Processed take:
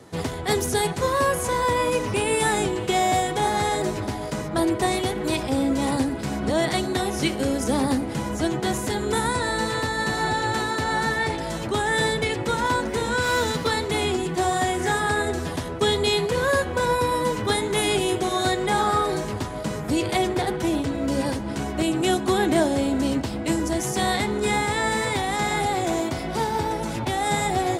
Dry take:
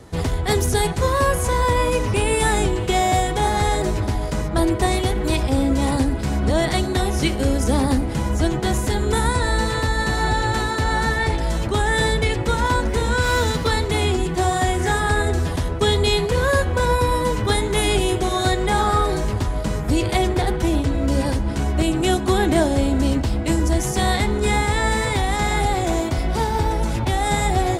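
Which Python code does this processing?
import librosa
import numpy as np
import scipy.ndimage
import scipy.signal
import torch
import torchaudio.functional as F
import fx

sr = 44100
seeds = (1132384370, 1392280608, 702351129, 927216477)

y = scipy.signal.sosfilt(scipy.signal.butter(2, 140.0, 'highpass', fs=sr, output='sos'), x)
y = y * 10.0 ** (-2.0 / 20.0)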